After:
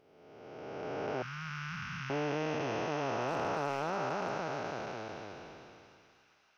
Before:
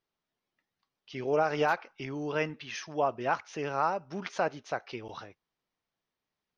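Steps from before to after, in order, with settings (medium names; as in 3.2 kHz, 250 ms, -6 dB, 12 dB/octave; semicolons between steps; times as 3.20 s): spectral blur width 1180 ms; 1.22–2.10 s: elliptic band-stop 190–1200 Hz, stop band 40 dB; 3.21–4.38 s: hard clipper -30.5 dBFS, distortion -24 dB; feedback echo behind a high-pass 272 ms, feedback 79%, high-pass 1.9 kHz, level -16.5 dB; trim +4.5 dB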